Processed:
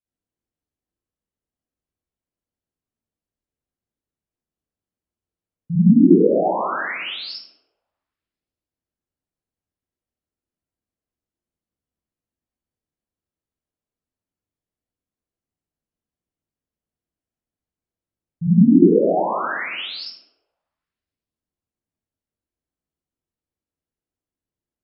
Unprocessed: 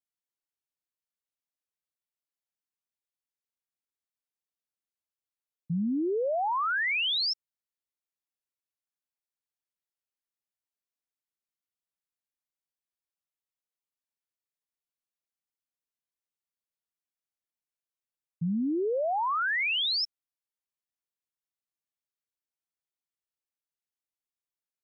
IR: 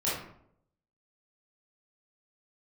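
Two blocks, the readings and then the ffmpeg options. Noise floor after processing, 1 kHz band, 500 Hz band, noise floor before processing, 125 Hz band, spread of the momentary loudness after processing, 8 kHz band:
under -85 dBFS, +5.0 dB, +12.0 dB, under -85 dBFS, +18.5 dB, 17 LU, n/a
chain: -filter_complex "[0:a]tiltshelf=f=640:g=9.5[a];[1:a]atrim=start_sample=2205,asetrate=23814,aresample=44100[b];[a][b]afir=irnorm=-1:irlink=0,volume=-5dB"

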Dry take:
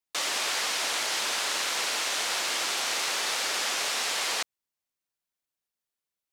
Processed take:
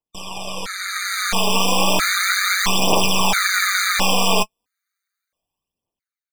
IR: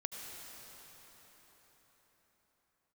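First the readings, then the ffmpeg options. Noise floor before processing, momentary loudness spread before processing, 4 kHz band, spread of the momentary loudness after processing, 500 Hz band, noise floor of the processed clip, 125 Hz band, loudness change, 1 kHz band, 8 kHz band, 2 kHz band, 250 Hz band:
under -85 dBFS, 1 LU, +6.5 dB, 11 LU, +13.0 dB, under -85 dBFS, n/a, +8.5 dB, +12.0 dB, +5.5 dB, +10.0 dB, +22.0 dB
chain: -af "highshelf=f=2.7k:g=-10.5,dynaudnorm=f=340:g=7:m=16dB,aeval=exprs='0.2*(cos(1*acos(clip(val(0)/0.2,-1,1)))-cos(1*PI/2))+0.0447*(cos(6*acos(clip(val(0)/0.2,-1,1)))-cos(6*PI/2))':c=same,aphaser=in_gain=1:out_gain=1:delay=4.8:decay=0.58:speed=0.34:type=triangular,tremolo=f=190:d=0.667,afftfilt=real='re*gt(sin(2*PI*0.75*pts/sr)*(1-2*mod(floor(b*sr/1024/1200),2)),0)':imag='im*gt(sin(2*PI*0.75*pts/sr)*(1-2*mod(floor(b*sr/1024/1200),2)),0)':win_size=1024:overlap=0.75,volume=4dB"

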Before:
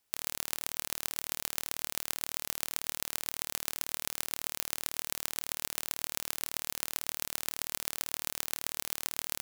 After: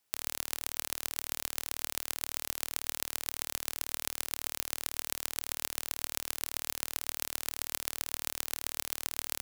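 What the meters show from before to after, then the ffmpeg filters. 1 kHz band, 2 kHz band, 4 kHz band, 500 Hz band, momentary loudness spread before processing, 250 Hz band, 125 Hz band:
0.0 dB, 0.0 dB, 0.0 dB, 0.0 dB, 0 LU, -0.5 dB, -1.5 dB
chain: -af "highpass=f=77:p=1"

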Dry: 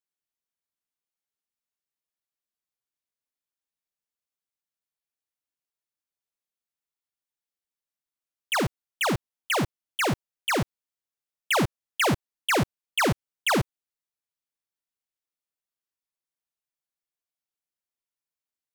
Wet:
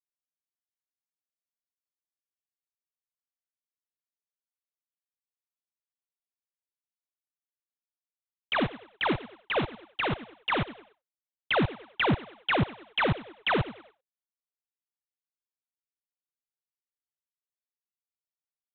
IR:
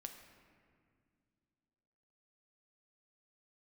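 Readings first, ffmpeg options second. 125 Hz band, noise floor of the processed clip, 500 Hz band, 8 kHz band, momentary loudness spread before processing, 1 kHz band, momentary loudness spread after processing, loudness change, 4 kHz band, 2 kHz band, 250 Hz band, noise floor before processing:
-2.0 dB, under -85 dBFS, -2.0 dB, under -40 dB, 6 LU, -2.5 dB, 6 LU, -2.5 dB, -3.0 dB, -2.5 dB, -2.0 dB, under -85 dBFS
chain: -filter_complex "[0:a]asplit=5[a][b][c][d][e];[b]adelay=97,afreqshift=100,volume=-17dB[f];[c]adelay=194,afreqshift=200,volume=-24.3dB[g];[d]adelay=291,afreqshift=300,volume=-31.7dB[h];[e]adelay=388,afreqshift=400,volume=-39dB[i];[a][f][g][h][i]amix=inputs=5:normalize=0,aphaser=in_gain=1:out_gain=1:delay=4.8:decay=0.37:speed=1.9:type=triangular,aresample=8000,acrusher=bits=2:mode=log:mix=0:aa=0.000001,aresample=44100,agate=range=-33dB:threshold=-46dB:ratio=3:detection=peak,volume=-3.5dB"

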